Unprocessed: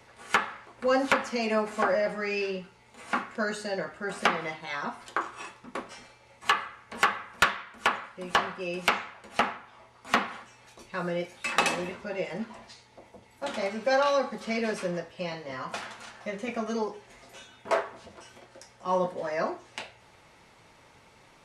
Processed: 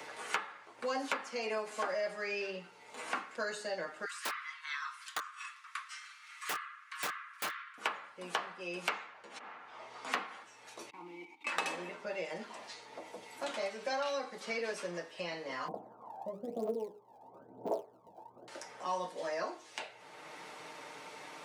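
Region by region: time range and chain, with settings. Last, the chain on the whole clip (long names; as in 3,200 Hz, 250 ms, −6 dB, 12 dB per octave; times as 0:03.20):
0:04.05–0:07.78: Butterworth high-pass 1,100 Hz 72 dB per octave + wrap-around overflow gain 22 dB
0:09.06–0:10.12: low-pass filter 7,300 Hz + volume swells 627 ms
0:10.90–0:11.47: one scale factor per block 3 bits + output level in coarse steps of 13 dB + formant filter u
0:15.68–0:18.48: Butterworth low-pass 840 Hz + phase shifter 1 Hz, delay 1.3 ms, feedback 80%
whole clip: high-pass filter 290 Hz 12 dB per octave; comb filter 6.6 ms, depth 48%; multiband upward and downward compressor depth 70%; level −7.5 dB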